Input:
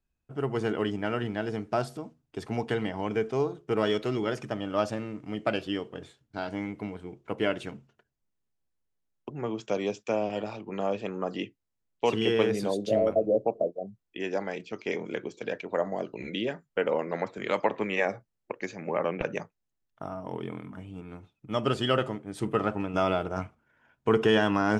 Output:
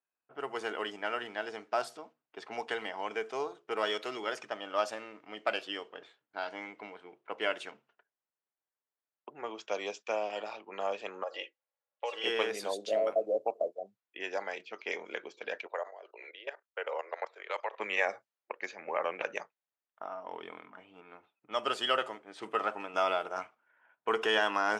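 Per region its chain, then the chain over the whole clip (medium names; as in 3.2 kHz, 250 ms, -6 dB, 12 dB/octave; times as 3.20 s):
11.23–12.24 s: resonant low shelf 350 Hz -12.5 dB, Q 3 + comb 3.6 ms, depth 64% + compression 2.5:1, threshold -32 dBFS
15.66–17.80 s: steep high-pass 380 Hz + level held to a coarse grid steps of 15 dB
whole clip: level-controlled noise filter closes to 1.9 kHz, open at -24.5 dBFS; high-pass 680 Hz 12 dB/octave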